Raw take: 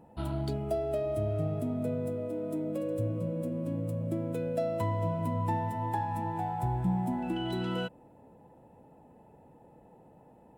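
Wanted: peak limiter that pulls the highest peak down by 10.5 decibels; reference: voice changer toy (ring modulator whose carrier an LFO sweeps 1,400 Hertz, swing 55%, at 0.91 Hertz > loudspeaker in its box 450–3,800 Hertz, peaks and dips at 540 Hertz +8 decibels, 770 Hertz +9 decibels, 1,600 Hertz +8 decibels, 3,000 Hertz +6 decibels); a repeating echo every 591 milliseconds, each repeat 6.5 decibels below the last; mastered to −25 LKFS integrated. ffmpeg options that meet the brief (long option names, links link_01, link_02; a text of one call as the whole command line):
ffmpeg -i in.wav -af "alimiter=level_in=5.5dB:limit=-24dB:level=0:latency=1,volume=-5.5dB,aecho=1:1:591|1182|1773|2364|2955|3546:0.473|0.222|0.105|0.0491|0.0231|0.0109,aeval=exprs='val(0)*sin(2*PI*1400*n/s+1400*0.55/0.91*sin(2*PI*0.91*n/s))':channel_layout=same,highpass=450,equalizer=frequency=540:width_type=q:width=4:gain=8,equalizer=frequency=770:width_type=q:width=4:gain=9,equalizer=frequency=1600:width_type=q:width=4:gain=8,equalizer=frequency=3000:width_type=q:width=4:gain=6,lowpass=frequency=3800:width=0.5412,lowpass=frequency=3800:width=1.3066,volume=8dB" out.wav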